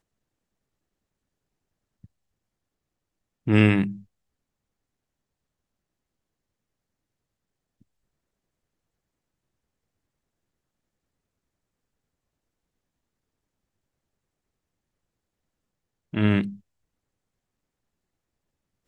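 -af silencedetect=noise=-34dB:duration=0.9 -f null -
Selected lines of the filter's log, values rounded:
silence_start: 0.00
silence_end: 3.47 | silence_duration: 3.47
silence_start: 3.96
silence_end: 16.14 | silence_duration: 12.17
silence_start: 16.53
silence_end: 18.87 | silence_duration: 2.34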